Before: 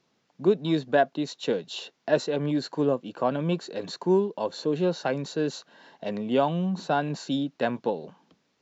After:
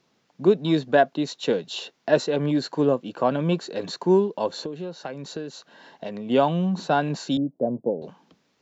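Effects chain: 4.61–6.3 compressor 12:1, threshold -33 dBFS, peak gain reduction 13.5 dB; 7.37–8.02 Chebyshev band-pass 120–620 Hz, order 3; gain +3.5 dB

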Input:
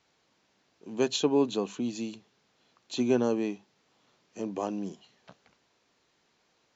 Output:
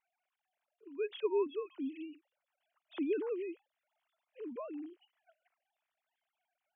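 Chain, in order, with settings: sine-wave speech; gain -8.5 dB

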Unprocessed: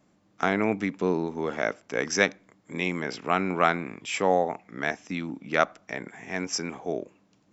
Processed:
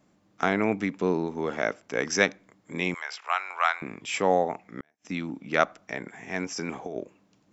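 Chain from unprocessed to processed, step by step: 2.94–3.82 HPF 830 Hz 24 dB/oct; 4.62–5.05 flipped gate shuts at -23 dBFS, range -41 dB; 6.52–7 negative-ratio compressor -33 dBFS, ratio -1

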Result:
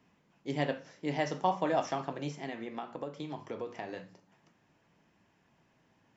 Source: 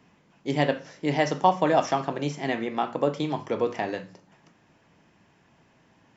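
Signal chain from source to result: 2.35–3.97 compressor, threshold -27 dBFS, peak gain reduction 9 dB; flange 0.38 Hz, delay 3 ms, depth 9.5 ms, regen -76%; gain -4 dB

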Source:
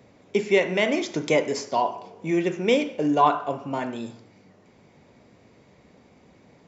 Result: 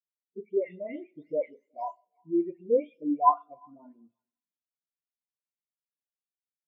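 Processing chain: spectral delay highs late, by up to 0.38 s; narrowing echo 0.36 s, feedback 43%, band-pass 2400 Hz, level -10 dB; on a send at -17.5 dB: reverb RT60 3.0 s, pre-delay 90 ms; on the sum: spectral expander 2.5:1; gain -2.5 dB

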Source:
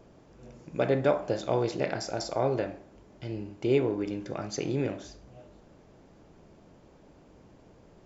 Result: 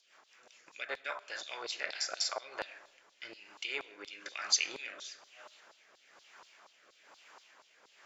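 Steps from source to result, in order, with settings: in parallel at +2 dB: compressor, threshold -37 dBFS, peak gain reduction 17 dB; 0.62–1.21 on the sum: transient shaper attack +2 dB, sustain -7 dB; vocal rider 0.5 s; rotary speaker horn 5 Hz, later 1.1 Hz, at 1.74; LFO high-pass saw down 4.2 Hz 980–4300 Hz; on a send at -21.5 dB: reverb RT60 1.2 s, pre-delay 55 ms

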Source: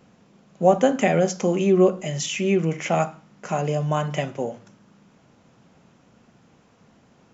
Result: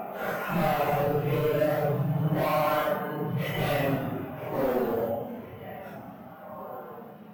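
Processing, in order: LPF 2600 Hz 12 dB/oct; notches 50/100/150 Hz; in parallel at -1 dB: compressor, threshold -33 dBFS, peak gain reduction 20.5 dB; on the sum: narrowing echo 0.441 s, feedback 72%, band-pass 990 Hz, level -17 dB; careless resampling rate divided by 3×, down none, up hold; overloaded stage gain 22.5 dB; Paulstretch 4.6×, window 0.05 s, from 3.39

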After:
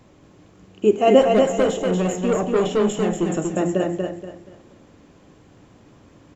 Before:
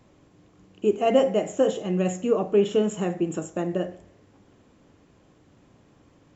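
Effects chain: 1.21–3.3 tube stage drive 21 dB, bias 0.25; feedback echo 0.238 s, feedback 31%, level -4 dB; gain +5.5 dB

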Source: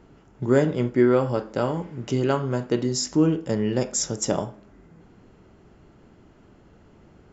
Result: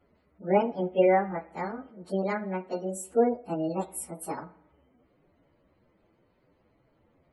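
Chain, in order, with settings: pitch shift by moving bins +7 st; spectral gate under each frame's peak -30 dB strong; spring tank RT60 1 s, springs 52/60 ms, chirp 30 ms, DRR 17.5 dB; upward expander 1.5:1, over -34 dBFS; gain -1 dB

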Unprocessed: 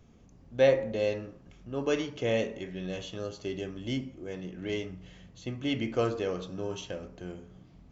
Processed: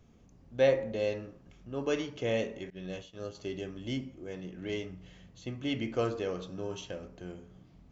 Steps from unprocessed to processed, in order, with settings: 2.7–3.35 expander -33 dBFS; gain -2.5 dB

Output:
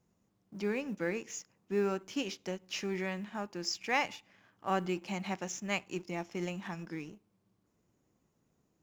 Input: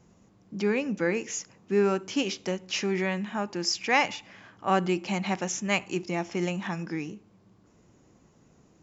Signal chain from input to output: G.711 law mismatch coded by A; gain -7 dB

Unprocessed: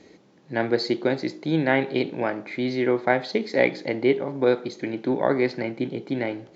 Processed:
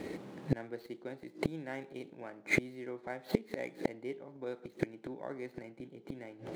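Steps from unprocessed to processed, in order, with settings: median filter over 9 samples; flipped gate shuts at -25 dBFS, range -30 dB; gain +9.5 dB

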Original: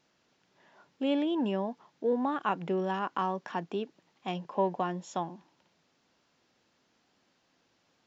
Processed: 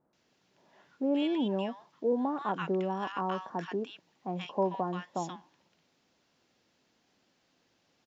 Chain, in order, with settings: bands offset in time lows, highs 0.13 s, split 1200 Hz

